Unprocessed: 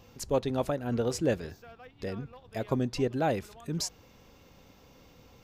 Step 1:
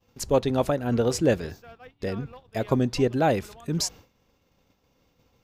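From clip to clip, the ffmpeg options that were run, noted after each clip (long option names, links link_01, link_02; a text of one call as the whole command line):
ffmpeg -i in.wav -af "agate=range=-33dB:threshold=-45dB:ratio=3:detection=peak,volume=6dB" out.wav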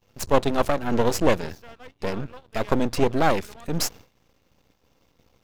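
ffmpeg -i in.wav -af "aeval=exprs='max(val(0),0)':channel_layout=same,volume=6dB" out.wav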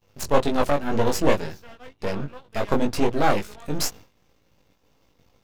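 ffmpeg -i in.wav -af "flanger=delay=18.5:depth=2.5:speed=2,volume=3dB" out.wav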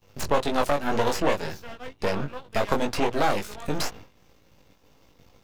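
ffmpeg -i in.wav -filter_complex "[0:a]acrossover=split=540|1200|3700[link_01][link_02][link_03][link_04];[link_01]acompressor=threshold=-30dB:ratio=4[link_05];[link_02]acompressor=threshold=-30dB:ratio=4[link_06];[link_03]acompressor=threshold=-37dB:ratio=4[link_07];[link_04]acompressor=threshold=-43dB:ratio=4[link_08];[link_05][link_06][link_07][link_08]amix=inputs=4:normalize=0,volume=5dB" out.wav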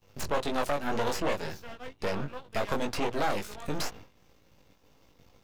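ffmpeg -i in.wav -af "asoftclip=type=tanh:threshold=-16.5dB,volume=-3.5dB" out.wav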